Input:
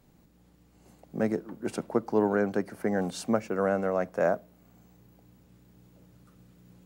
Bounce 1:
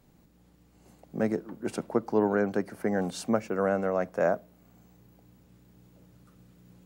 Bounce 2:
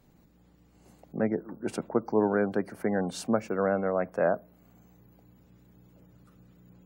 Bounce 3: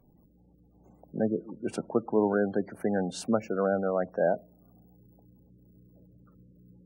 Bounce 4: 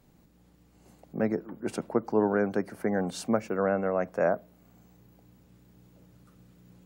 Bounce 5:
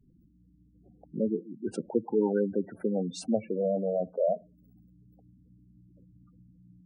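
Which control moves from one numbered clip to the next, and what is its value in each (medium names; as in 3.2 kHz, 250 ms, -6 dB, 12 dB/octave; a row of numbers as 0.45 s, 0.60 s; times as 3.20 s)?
spectral gate, under each frame's peak: -60 dB, -35 dB, -20 dB, -45 dB, -10 dB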